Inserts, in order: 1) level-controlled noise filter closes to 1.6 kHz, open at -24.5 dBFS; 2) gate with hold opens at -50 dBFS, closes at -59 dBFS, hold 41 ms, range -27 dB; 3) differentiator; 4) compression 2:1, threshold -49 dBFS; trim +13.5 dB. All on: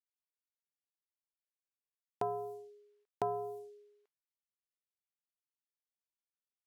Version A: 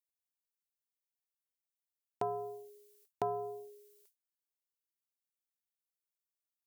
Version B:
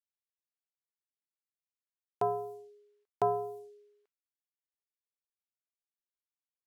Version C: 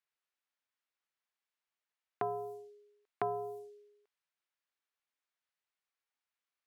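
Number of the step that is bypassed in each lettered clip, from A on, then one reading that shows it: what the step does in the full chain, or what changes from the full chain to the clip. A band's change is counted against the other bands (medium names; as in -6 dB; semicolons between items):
1, momentary loudness spread change +2 LU; 4, loudness change +5.5 LU; 2, 2 kHz band +8.0 dB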